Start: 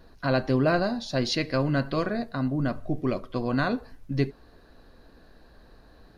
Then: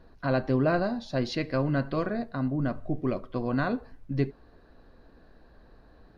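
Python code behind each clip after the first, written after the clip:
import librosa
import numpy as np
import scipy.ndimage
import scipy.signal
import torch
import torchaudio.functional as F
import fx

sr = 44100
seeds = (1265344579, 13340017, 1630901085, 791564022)

y = fx.high_shelf(x, sr, hz=3700.0, db=-12.0)
y = y * 10.0 ** (-1.5 / 20.0)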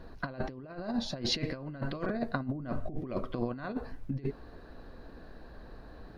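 y = fx.over_compress(x, sr, threshold_db=-33.0, ratio=-0.5)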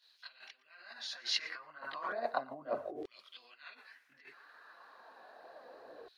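y = x + 10.0 ** (-22.0 / 20.0) * np.pad(x, (int(117 * sr / 1000.0), 0))[:len(x)]
y = fx.filter_lfo_highpass(y, sr, shape='saw_down', hz=0.33, low_hz=440.0, high_hz=3800.0, q=2.4)
y = fx.chorus_voices(y, sr, voices=2, hz=1.1, base_ms=22, depth_ms=3.0, mix_pct=65)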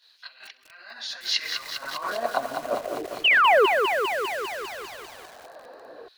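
y = fx.spec_paint(x, sr, seeds[0], shape='fall', start_s=3.24, length_s=0.42, low_hz=360.0, high_hz=3200.0, level_db=-26.0)
y = fx.echo_wet_highpass(y, sr, ms=66, feedback_pct=80, hz=2100.0, wet_db=-19.5)
y = fx.echo_crushed(y, sr, ms=200, feedback_pct=80, bits=8, wet_db=-5.5)
y = y * 10.0 ** (8.5 / 20.0)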